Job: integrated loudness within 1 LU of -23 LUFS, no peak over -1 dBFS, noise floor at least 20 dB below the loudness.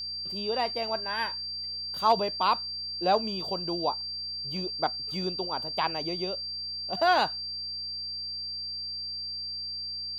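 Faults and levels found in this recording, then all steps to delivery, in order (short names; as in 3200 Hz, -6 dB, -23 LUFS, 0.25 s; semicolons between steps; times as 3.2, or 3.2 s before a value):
hum 60 Hz; harmonics up to 240 Hz; hum level -54 dBFS; steady tone 4700 Hz; tone level -33 dBFS; loudness -29.5 LUFS; peak -12.0 dBFS; loudness target -23.0 LUFS
-> de-hum 60 Hz, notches 4; notch 4700 Hz, Q 30; gain +6.5 dB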